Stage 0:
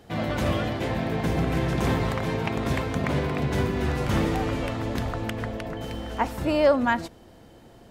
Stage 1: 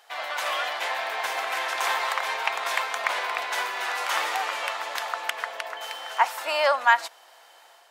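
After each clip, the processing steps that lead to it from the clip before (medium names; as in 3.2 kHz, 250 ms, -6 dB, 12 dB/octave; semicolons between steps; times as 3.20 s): high-pass 800 Hz 24 dB/octave; level rider gain up to 4 dB; trim +3 dB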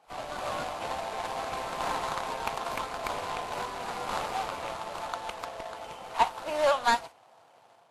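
median filter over 25 samples; Vorbis 32 kbps 32 kHz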